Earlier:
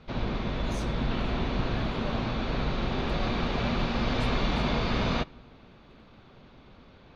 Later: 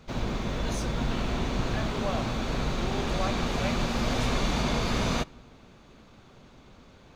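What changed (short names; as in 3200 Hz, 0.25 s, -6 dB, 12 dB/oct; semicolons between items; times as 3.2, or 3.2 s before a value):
speech +7.0 dB; background: remove LPF 4500 Hz 24 dB/oct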